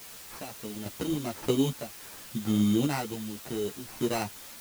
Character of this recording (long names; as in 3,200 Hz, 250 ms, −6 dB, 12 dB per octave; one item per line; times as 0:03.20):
aliases and images of a low sample rate 3,400 Hz, jitter 0%
sample-and-hold tremolo 3.5 Hz, depth 85%
a quantiser's noise floor 8 bits, dither triangular
a shimmering, thickened sound